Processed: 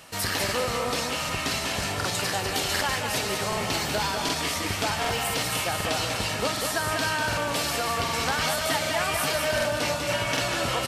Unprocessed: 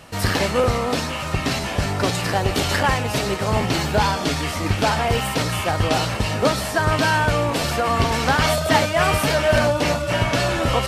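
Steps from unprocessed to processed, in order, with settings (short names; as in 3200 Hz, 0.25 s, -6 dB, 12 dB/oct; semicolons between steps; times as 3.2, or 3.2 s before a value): tilt +2 dB/oct; compressor 3:1, threshold -20 dBFS, peak gain reduction 7 dB; on a send: feedback echo 0.195 s, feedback 31%, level -5 dB; on the sum: crackling interface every 0.76 s, samples 2048, repeat, from 0.44; gain -4.5 dB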